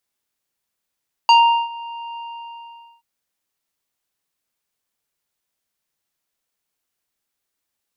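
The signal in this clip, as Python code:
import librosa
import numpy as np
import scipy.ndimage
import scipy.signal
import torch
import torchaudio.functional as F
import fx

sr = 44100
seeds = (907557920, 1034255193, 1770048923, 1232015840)

y = fx.sub_voice(sr, note=82, wave='square', cutoff_hz=2600.0, q=1.2, env_oct=1.0, env_s=0.13, attack_ms=1.8, decay_s=0.39, sustain_db=-22, release_s=0.85, note_s=0.88, slope=24)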